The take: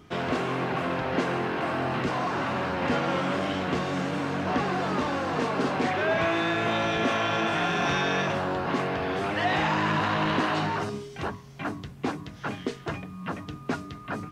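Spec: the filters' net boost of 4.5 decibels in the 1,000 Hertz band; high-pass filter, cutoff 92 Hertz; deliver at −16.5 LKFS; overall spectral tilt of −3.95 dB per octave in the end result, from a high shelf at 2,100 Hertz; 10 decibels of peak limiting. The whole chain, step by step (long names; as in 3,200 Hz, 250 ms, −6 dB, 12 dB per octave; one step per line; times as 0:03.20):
high-pass filter 92 Hz
parametric band 1,000 Hz +6.5 dB
high-shelf EQ 2,100 Hz −3.5 dB
level +13.5 dB
brickwall limiter −8 dBFS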